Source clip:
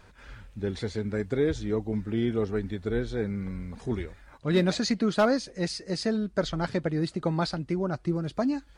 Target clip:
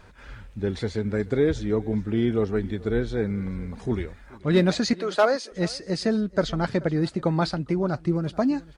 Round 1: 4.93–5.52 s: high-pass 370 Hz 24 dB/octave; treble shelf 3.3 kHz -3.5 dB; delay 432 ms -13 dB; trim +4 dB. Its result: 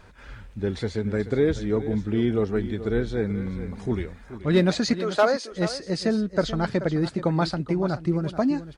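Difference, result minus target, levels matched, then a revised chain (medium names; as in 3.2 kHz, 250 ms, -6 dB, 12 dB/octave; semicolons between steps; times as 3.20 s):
echo-to-direct +9 dB
4.93–5.52 s: high-pass 370 Hz 24 dB/octave; treble shelf 3.3 kHz -3.5 dB; delay 432 ms -22 dB; trim +4 dB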